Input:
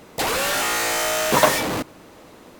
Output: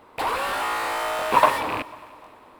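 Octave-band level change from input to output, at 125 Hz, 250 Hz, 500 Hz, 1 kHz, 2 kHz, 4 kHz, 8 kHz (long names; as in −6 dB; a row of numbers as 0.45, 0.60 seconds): −9.5, −7.5, −4.5, +2.0, −4.5, −8.5, −15.0 decibels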